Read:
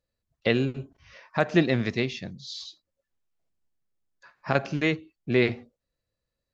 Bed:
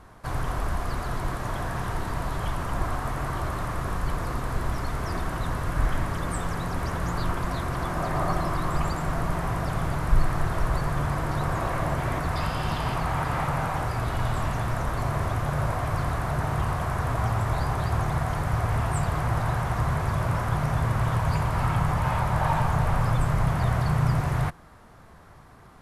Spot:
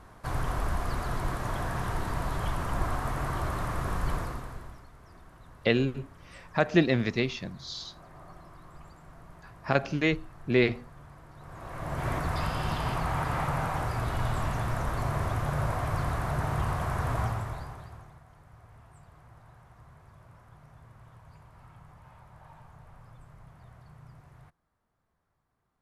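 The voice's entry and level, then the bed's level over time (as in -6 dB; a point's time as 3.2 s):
5.20 s, -1.0 dB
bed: 4.16 s -2 dB
4.9 s -23.5 dB
11.35 s -23.5 dB
12.07 s -3 dB
17.21 s -3 dB
18.23 s -28.5 dB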